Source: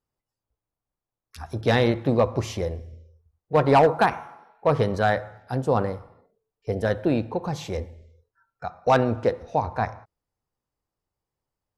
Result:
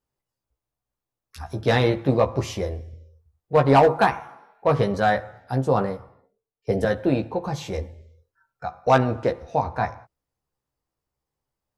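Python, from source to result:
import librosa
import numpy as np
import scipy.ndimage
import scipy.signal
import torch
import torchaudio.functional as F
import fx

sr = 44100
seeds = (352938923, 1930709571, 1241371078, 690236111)

y = fx.doubler(x, sr, ms=15.0, db=-5.0)
y = fx.band_widen(y, sr, depth_pct=40, at=(5.97, 6.85))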